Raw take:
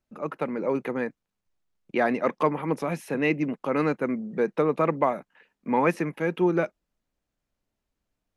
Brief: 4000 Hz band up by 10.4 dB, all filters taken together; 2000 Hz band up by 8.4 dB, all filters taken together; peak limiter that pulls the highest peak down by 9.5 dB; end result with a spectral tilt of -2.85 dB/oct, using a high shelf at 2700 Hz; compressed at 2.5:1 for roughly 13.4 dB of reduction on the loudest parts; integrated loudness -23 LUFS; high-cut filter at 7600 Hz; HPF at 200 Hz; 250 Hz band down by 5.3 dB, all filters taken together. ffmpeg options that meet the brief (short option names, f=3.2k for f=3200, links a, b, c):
-af "highpass=200,lowpass=7.6k,equalizer=f=250:t=o:g=-6,equalizer=f=2k:t=o:g=6.5,highshelf=f=2.7k:g=4,equalizer=f=4k:t=o:g=8.5,acompressor=threshold=-36dB:ratio=2.5,volume=16.5dB,alimiter=limit=-11dB:level=0:latency=1"